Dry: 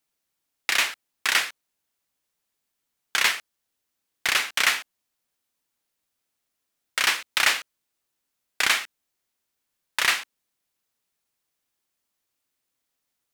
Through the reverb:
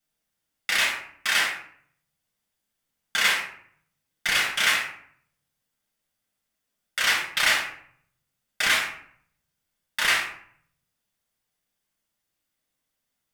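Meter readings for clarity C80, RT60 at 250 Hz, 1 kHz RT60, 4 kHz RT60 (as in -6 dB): 8.0 dB, 0.75 s, 0.60 s, 0.40 s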